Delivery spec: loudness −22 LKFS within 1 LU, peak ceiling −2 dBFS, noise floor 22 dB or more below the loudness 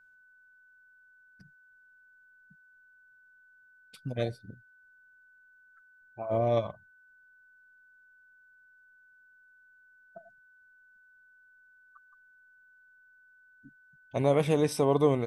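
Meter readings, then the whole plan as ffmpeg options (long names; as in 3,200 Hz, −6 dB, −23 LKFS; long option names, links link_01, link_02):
interfering tone 1,500 Hz; level of the tone −58 dBFS; integrated loudness −29.0 LKFS; sample peak −11.5 dBFS; target loudness −22.0 LKFS
→ -af "bandreject=frequency=1500:width=30"
-af "volume=7dB"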